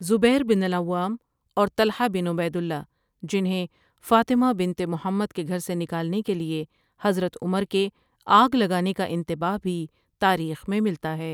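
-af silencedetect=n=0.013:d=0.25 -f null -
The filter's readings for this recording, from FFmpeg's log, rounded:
silence_start: 1.16
silence_end: 1.57 | silence_duration: 0.41
silence_start: 2.83
silence_end: 3.23 | silence_duration: 0.40
silence_start: 3.66
silence_end: 4.05 | silence_duration: 0.39
silence_start: 6.64
silence_end: 7.01 | silence_duration: 0.37
silence_start: 7.89
silence_end: 8.27 | silence_duration: 0.38
silence_start: 9.86
silence_end: 10.21 | silence_duration: 0.35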